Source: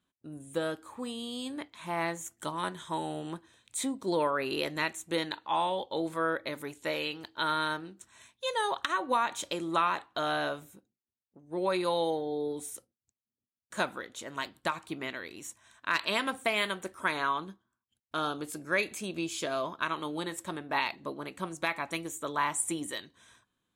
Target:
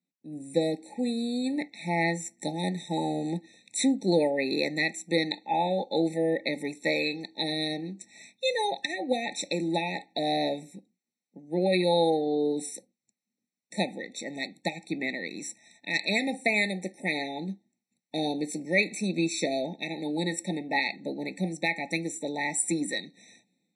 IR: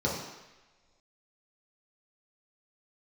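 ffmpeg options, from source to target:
-af "dynaudnorm=f=120:g=5:m=15.5dB,highpass=f=180:w=0.5412,highpass=f=180:w=1.3066,equalizer=f=180:t=q:w=4:g=7,equalizer=f=390:t=q:w=4:g=-6,equalizer=f=650:t=q:w=4:g=-6,equalizer=f=1.1k:t=q:w=4:g=-10,equalizer=f=3.1k:t=q:w=4:g=-7,lowpass=f=8.8k:w=0.5412,lowpass=f=8.8k:w=1.3066,afftfilt=real='re*eq(mod(floor(b*sr/1024/890),2),0)':imag='im*eq(mod(floor(b*sr/1024/890),2),0)':win_size=1024:overlap=0.75,volume=-5.5dB"

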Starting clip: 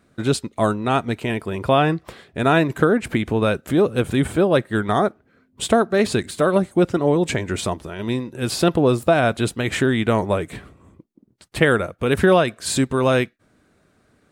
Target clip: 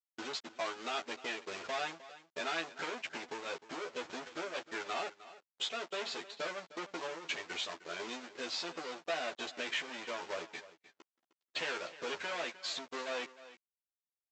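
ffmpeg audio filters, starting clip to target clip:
-filter_complex "[0:a]aeval=exprs='(tanh(22.4*val(0)+0.05)-tanh(0.05))/22.4':c=same,afftdn=nr=14:nf=-39,adynamicequalizer=threshold=0.00355:dfrequency=3100:dqfactor=1.3:tfrequency=3100:tqfactor=1.3:attack=5:release=100:ratio=0.375:range=3:mode=boostabove:tftype=bell,acompressor=threshold=-42dB:ratio=6,aresample=16000,acrusher=bits=7:mix=0:aa=0.000001,aresample=44100,agate=range=-33dB:threshold=-43dB:ratio=16:detection=peak,highpass=520,lowpass=6k,asplit=2[a][b];[b]adelay=12,volume=-2.5dB[c];[a][c]amix=inputs=2:normalize=0,aecho=1:1:307:0.15,volume=6dB"

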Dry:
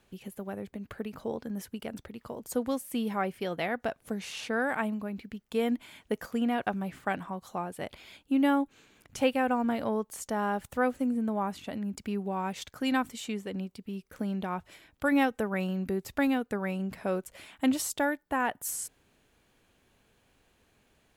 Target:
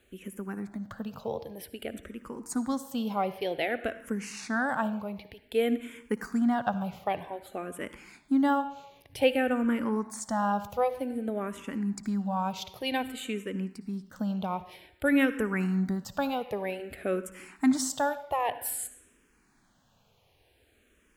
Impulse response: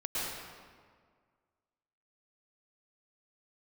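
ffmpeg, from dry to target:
-filter_complex "[0:a]asplit=2[a][b];[1:a]atrim=start_sample=2205,asetrate=83790,aresample=44100[c];[b][c]afir=irnorm=-1:irlink=0,volume=-13dB[d];[a][d]amix=inputs=2:normalize=0,asplit=2[e][f];[f]afreqshift=-0.53[g];[e][g]amix=inputs=2:normalize=1,volume=3dB"

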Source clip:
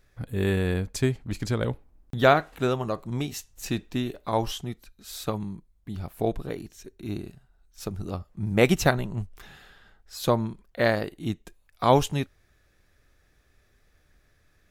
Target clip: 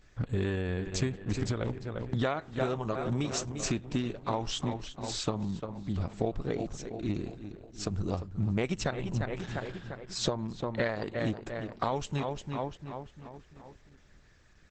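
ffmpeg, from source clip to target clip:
-filter_complex "[0:a]asplit=2[a][b];[b]adelay=348,lowpass=f=3.5k:p=1,volume=-12.5dB,asplit=2[c][d];[d]adelay=348,lowpass=f=3.5k:p=1,volume=0.52,asplit=2[e][f];[f]adelay=348,lowpass=f=3.5k:p=1,volume=0.52,asplit=2[g][h];[h]adelay=348,lowpass=f=3.5k:p=1,volume=0.52,asplit=2[i][j];[j]adelay=348,lowpass=f=3.5k:p=1,volume=0.52[k];[a][c][e][g][i][k]amix=inputs=6:normalize=0,acompressor=threshold=-29dB:ratio=12,volume=3.5dB" -ar 48000 -c:a libopus -b:a 10k

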